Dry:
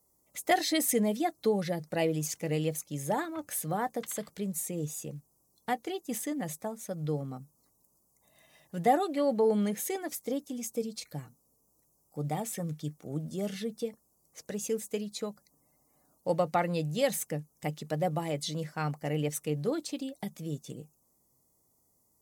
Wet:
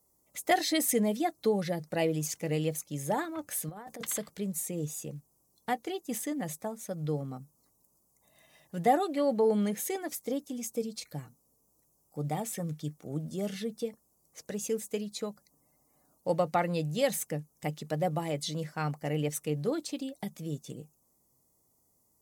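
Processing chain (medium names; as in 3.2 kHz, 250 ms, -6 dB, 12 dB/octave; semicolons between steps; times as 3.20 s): 3.69–4.18 s: compressor with a negative ratio -37 dBFS, ratio -0.5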